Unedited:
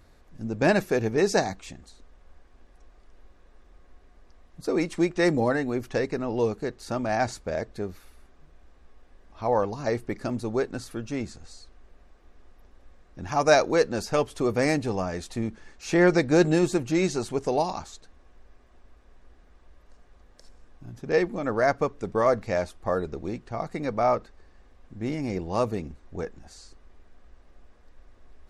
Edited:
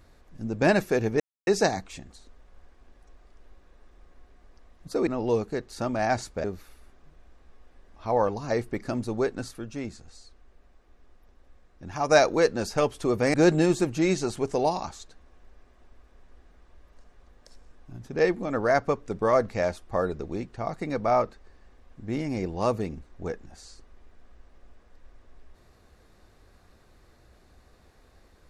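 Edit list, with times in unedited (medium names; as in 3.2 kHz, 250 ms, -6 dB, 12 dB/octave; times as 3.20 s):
1.20 s: insert silence 0.27 s
4.80–6.17 s: delete
7.54–7.80 s: delete
10.87–13.45 s: gain -3.5 dB
14.70–16.27 s: delete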